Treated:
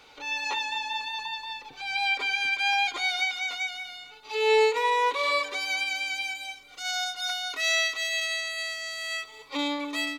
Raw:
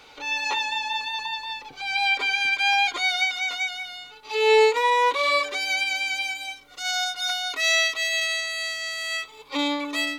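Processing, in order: feedback delay 235 ms, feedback 43%, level -19.5 dB; trim -4 dB

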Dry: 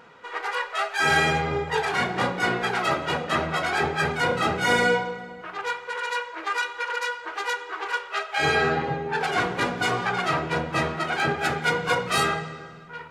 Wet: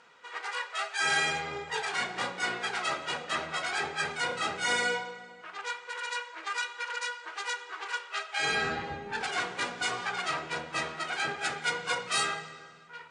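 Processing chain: 8.49–9.29 s: octave divider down 1 oct, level +3 dB; steep low-pass 9.6 kHz 72 dB/octave; tilt EQ +3 dB/octave; trim -8.5 dB

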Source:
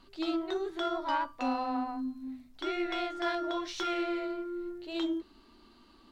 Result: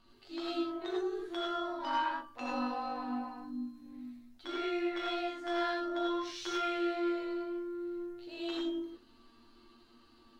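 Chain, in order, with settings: granular stretch 1.7×, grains 42 ms; gated-style reverb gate 120 ms rising, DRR -2.5 dB; trim -5.5 dB

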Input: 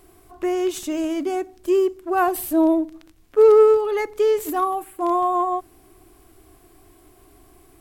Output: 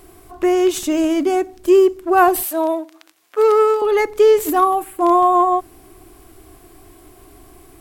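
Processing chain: 2.43–3.82 s: high-pass 700 Hz 12 dB/octave; trim +7 dB

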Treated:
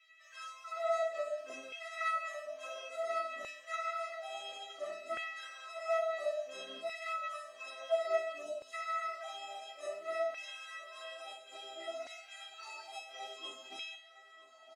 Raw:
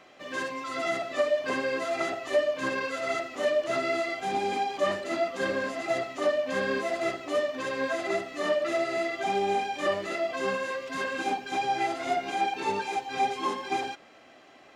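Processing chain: 8.43–8.73 s: spectral selection erased 1.1–2.8 kHz; feedback comb 650 Hz, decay 0.48 s, mix 100%; LFO high-pass saw down 0.58 Hz 220–2400 Hz; 10.84–11.88 s: comb of notches 720 Hz; feedback delay 962 ms, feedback 55%, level -19 dB; trim +10 dB

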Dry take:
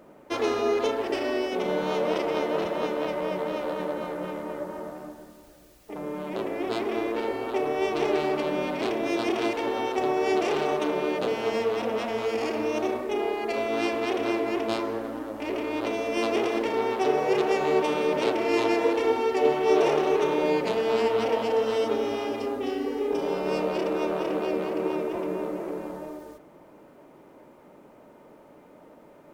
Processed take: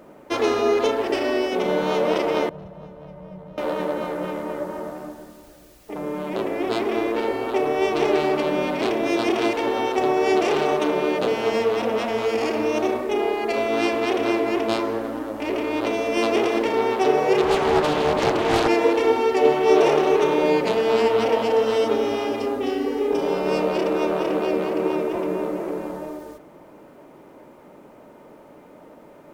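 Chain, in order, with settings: 2.49–3.58 s: FFT filter 170 Hz 0 dB, 260 Hz -24 dB, 640 Hz -17 dB, 2.3 kHz -26 dB; 17.42–18.68 s: loudspeaker Doppler distortion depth 0.67 ms; trim +5 dB

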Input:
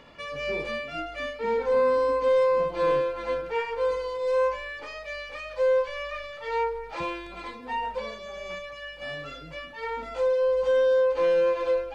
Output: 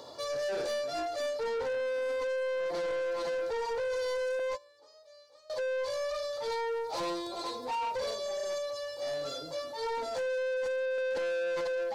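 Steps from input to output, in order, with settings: high-pass 88 Hz 24 dB/octave; 4.39–5.50 s: gate -28 dBFS, range -24 dB; FFT filter 120 Hz 0 dB, 180 Hz -10 dB, 350 Hz +5 dB, 620 Hz +8 dB, 950 Hz +5 dB, 2.6 kHz -16 dB, 3.9 kHz +13 dB; peak limiter -19 dBFS, peak gain reduction 10.5 dB; 10.98–11.61 s: small resonant body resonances 220/1700 Hz, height 15 dB, ringing for 35 ms; saturation -30.5 dBFS, distortion -8 dB

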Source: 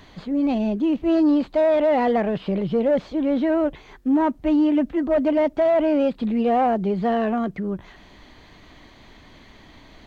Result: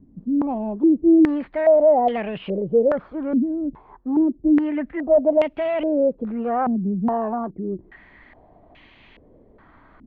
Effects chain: step-sequenced low-pass 2.4 Hz 250–2700 Hz; trim -5.5 dB

